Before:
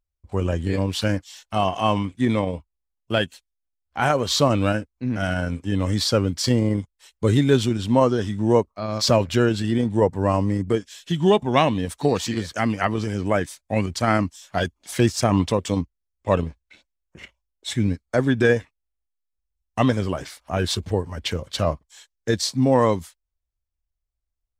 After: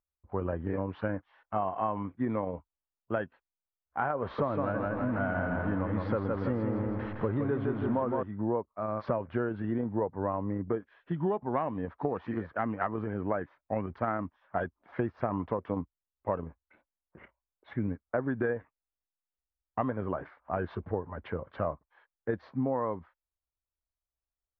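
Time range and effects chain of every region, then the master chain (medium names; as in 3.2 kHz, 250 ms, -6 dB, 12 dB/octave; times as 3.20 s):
4.22–8.23 s: jump at every zero crossing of -24 dBFS + feedback delay 163 ms, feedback 44%, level -4 dB
whole clip: inverse Chebyshev low-pass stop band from 7.6 kHz, stop band 80 dB; tilt EQ +2.5 dB/octave; compression 10:1, threshold -24 dBFS; trim -2 dB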